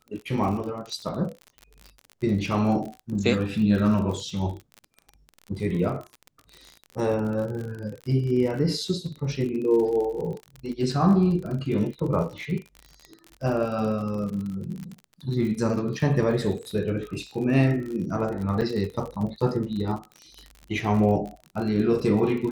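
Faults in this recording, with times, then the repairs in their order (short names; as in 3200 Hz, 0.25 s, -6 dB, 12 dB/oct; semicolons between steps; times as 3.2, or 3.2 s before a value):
crackle 46/s -32 dBFS
18.61–18.62 gap 7.1 ms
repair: de-click; interpolate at 18.61, 7.1 ms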